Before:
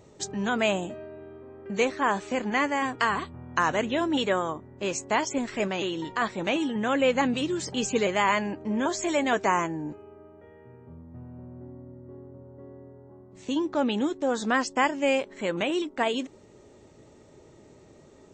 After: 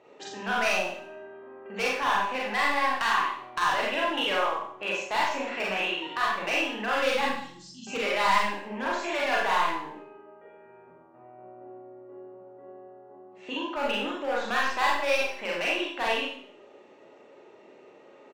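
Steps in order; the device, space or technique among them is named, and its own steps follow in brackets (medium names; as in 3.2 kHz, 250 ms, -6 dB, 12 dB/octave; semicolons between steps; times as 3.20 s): 7.28–7.87 s: elliptic band-stop 200–4800 Hz, stop band 40 dB; megaphone (band-pass 450–2600 Hz; peaking EQ 2.7 kHz +9 dB 0.2 oct; hard clipper -22.5 dBFS, distortion -10 dB; doubling 42 ms -13 dB); dynamic bell 410 Hz, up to -7 dB, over -44 dBFS, Q 0.9; Schroeder reverb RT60 0.58 s, combs from 31 ms, DRR -4 dB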